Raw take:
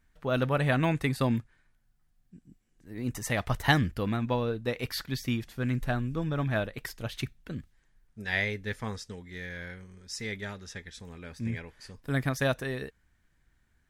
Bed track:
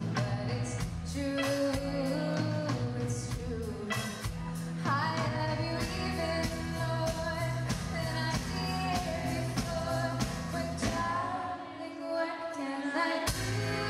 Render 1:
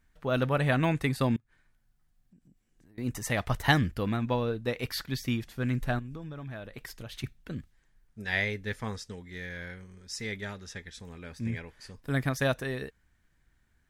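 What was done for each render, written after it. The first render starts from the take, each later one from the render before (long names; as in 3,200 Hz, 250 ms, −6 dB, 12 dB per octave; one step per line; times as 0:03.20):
0:01.36–0:02.98: downward compressor 10 to 1, threshold −55 dBFS
0:05.99–0:07.24: downward compressor, threshold −37 dBFS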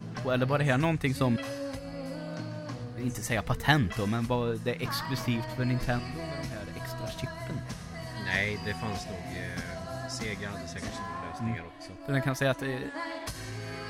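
mix in bed track −6 dB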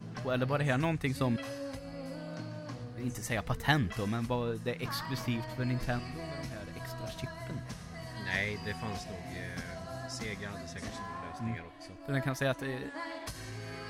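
level −4 dB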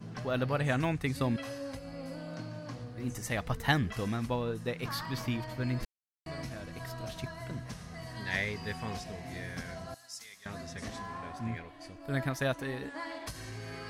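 0:05.85–0:06.26: silence
0:09.94–0:10.46: first-order pre-emphasis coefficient 0.97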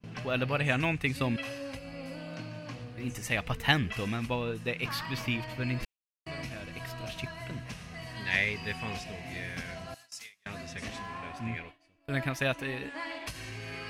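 noise gate with hold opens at −36 dBFS
parametric band 2,600 Hz +11.5 dB 0.63 octaves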